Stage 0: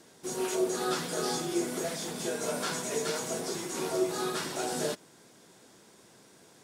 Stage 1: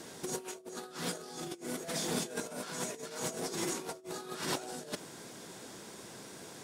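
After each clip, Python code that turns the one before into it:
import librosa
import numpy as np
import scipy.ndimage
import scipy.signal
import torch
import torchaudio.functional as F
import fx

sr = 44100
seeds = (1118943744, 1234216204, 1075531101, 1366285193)

y = fx.over_compress(x, sr, threshold_db=-39.0, ratio=-0.5)
y = y * librosa.db_to_amplitude(1.0)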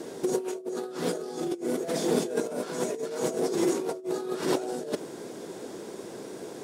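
y = fx.peak_eq(x, sr, hz=400.0, db=14.0, octaves=1.8)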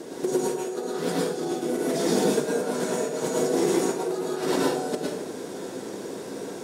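y = fx.rev_plate(x, sr, seeds[0], rt60_s=0.68, hf_ratio=0.8, predelay_ms=95, drr_db=-3.5)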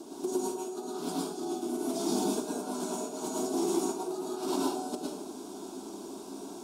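y = fx.fixed_phaser(x, sr, hz=500.0, stages=6)
y = y * librosa.db_to_amplitude(-4.0)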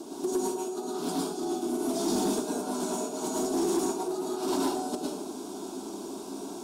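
y = 10.0 ** (-24.0 / 20.0) * np.tanh(x / 10.0 ** (-24.0 / 20.0))
y = y * librosa.db_to_amplitude(4.0)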